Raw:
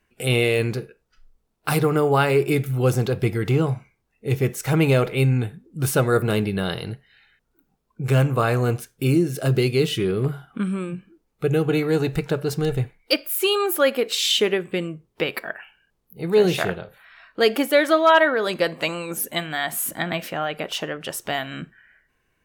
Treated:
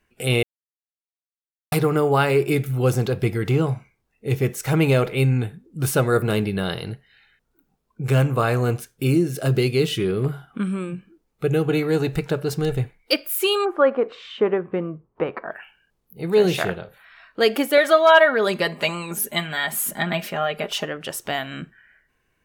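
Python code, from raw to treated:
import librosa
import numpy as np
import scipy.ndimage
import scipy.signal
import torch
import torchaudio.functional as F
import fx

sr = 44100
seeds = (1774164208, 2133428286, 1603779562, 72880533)

y = fx.lowpass_res(x, sr, hz=1100.0, q=1.9, at=(13.64, 15.5), fade=0.02)
y = fx.comb(y, sr, ms=4.9, depth=0.65, at=(17.77, 20.85))
y = fx.edit(y, sr, fx.silence(start_s=0.43, length_s=1.29), tone=tone)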